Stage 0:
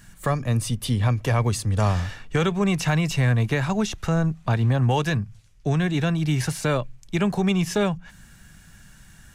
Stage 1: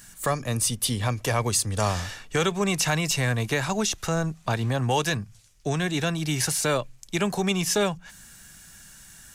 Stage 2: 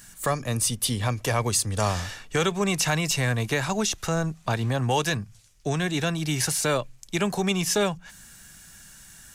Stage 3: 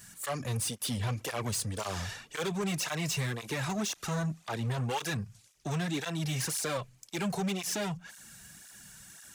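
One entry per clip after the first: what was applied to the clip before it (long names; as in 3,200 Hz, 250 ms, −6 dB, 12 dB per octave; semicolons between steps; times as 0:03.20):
bass and treble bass −7 dB, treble +9 dB
no processing that can be heard
soft clipping −26.5 dBFS, distortion −9 dB; through-zero flanger with one copy inverted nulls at 1.9 Hz, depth 3.9 ms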